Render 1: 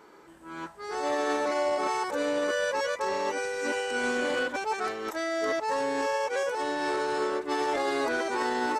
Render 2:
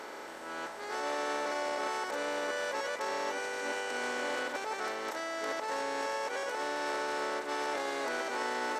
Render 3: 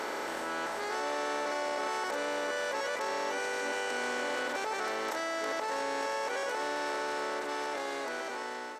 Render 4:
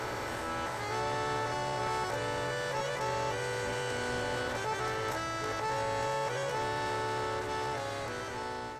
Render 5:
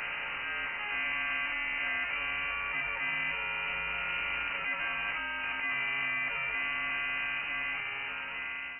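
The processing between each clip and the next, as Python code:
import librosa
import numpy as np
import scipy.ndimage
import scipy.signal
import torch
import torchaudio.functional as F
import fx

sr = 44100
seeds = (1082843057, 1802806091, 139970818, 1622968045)

y1 = fx.bin_compress(x, sr, power=0.4)
y1 = fx.low_shelf(y1, sr, hz=420.0, db=-7.5)
y1 = F.gain(torch.from_numpy(y1), -8.5).numpy()
y2 = fx.fade_out_tail(y1, sr, length_s=2.32)
y2 = fx.env_flatten(y2, sr, amount_pct=70)
y3 = fx.octave_divider(y2, sr, octaves=2, level_db=2.0)
y3 = fx.doubler(y3, sr, ms=16.0, db=-6.0)
y3 = F.gain(torch.from_numpy(y3), -1.5).numpy()
y4 = fx.freq_invert(y3, sr, carrier_hz=2900)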